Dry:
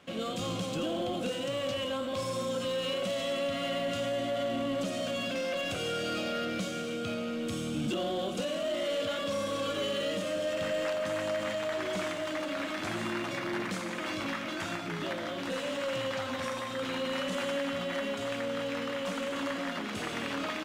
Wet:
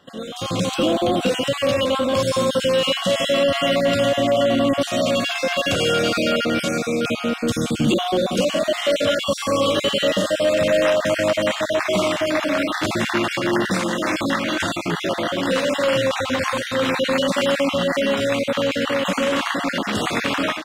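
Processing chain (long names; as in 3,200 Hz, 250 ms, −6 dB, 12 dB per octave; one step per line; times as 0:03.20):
time-frequency cells dropped at random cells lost 26%
automatic gain control gain up to 11.5 dB
level +3 dB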